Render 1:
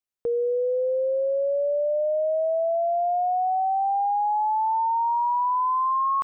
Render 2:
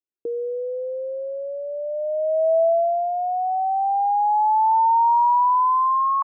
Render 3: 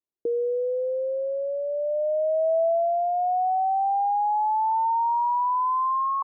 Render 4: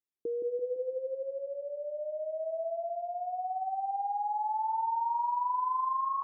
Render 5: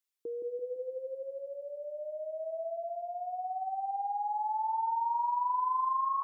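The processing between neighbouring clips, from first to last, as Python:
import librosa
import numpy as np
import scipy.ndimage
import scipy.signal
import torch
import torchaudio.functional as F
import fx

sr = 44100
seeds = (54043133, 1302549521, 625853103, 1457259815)

y1 = fx.filter_sweep_bandpass(x, sr, from_hz=340.0, to_hz=930.0, start_s=1.64, end_s=3.12, q=3.8)
y1 = y1 * 10.0 ** (6.5 / 20.0)
y2 = scipy.signal.sosfilt(scipy.signal.butter(4, 1000.0, 'lowpass', fs=sr, output='sos'), y1)
y2 = fx.rider(y2, sr, range_db=3, speed_s=0.5)
y2 = y2 * 10.0 ** (-1.5 / 20.0)
y3 = fx.peak_eq(y2, sr, hz=660.0, db=-8.0, octaves=0.68)
y3 = fx.echo_filtered(y3, sr, ms=169, feedback_pct=46, hz=900.0, wet_db=-5)
y3 = y3 * 10.0 ** (-5.5 / 20.0)
y4 = fx.tilt_shelf(y3, sr, db=-7.0, hz=970.0)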